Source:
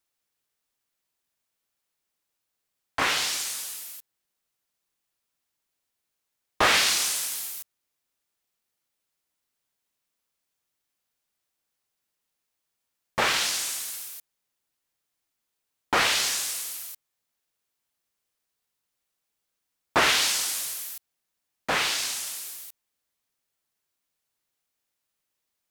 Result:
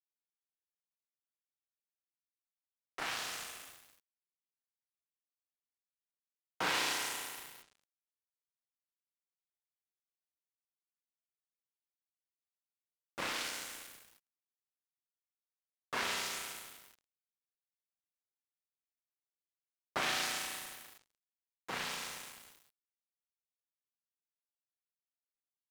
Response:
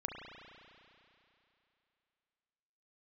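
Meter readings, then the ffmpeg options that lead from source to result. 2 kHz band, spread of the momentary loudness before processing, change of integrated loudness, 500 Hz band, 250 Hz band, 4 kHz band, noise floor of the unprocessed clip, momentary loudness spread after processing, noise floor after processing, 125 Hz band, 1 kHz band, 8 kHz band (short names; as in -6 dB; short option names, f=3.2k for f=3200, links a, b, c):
-12.5 dB, 19 LU, -13.0 dB, -13.0 dB, -11.0 dB, -13.5 dB, -82 dBFS, 20 LU, under -85 dBFS, -12.0 dB, -12.0 dB, -15.5 dB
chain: -filter_complex "[0:a]aeval=exprs='val(0)*sin(2*PI*300*n/s)':c=same,acompressor=mode=upward:threshold=-41dB:ratio=2.5,highpass=150,bandreject=f=219.8:t=h:w=4,bandreject=f=439.6:t=h:w=4,bandreject=f=659.4:t=h:w=4,bandreject=f=879.2:t=h:w=4,bandreject=f=1.099k:t=h:w=4,bandreject=f=1.3188k:t=h:w=4,bandreject=f=1.5386k:t=h:w=4,bandreject=f=1.7584k:t=h:w=4,bandreject=f=1.9782k:t=h:w=4,bandreject=f=2.198k:t=h:w=4,bandreject=f=2.4178k:t=h:w=4,bandreject=f=2.6376k:t=h:w=4,bandreject=f=2.8574k:t=h:w=4,bandreject=f=3.0772k:t=h:w=4,bandreject=f=3.297k:t=h:w=4,bandreject=f=3.5168k:t=h:w=4,bandreject=f=3.7366k:t=h:w=4,bandreject=f=3.9564k:t=h:w=4,bandreject=f=4.1762k:t=h:w=4,bandreject=f=4.396k:t=h:w=4,bandreject=f=4.6158k:t=h:w=4,bandreject=f=4.8356k:t=h:w=4,bandreject=f=5.0554k:t=h:w=4,bandreject=f=5.2752k:t=h:w=4,bandreject=f=5.495k:t=h:w=4,bandreject=f=5.7148k:t=h:w=4,bandreject=f=5.9346k:t=h:w=4,bandreject=f=6.1544k:t=h:w=4,bandreject=f=6.3742k:t=h:w=4,bandreject=f=6.594k:t=h:w=4,bandreject=f=6.8138k:t=h:w=4[a];[1:a]atrim=start_sample=2205[b];[a][b]afir=irnorm=-1:irlink=0,aeval=exprs='sgn(val(0))*max(abs(val(0))-0.015,0)':c=same,volume=-7.5dB"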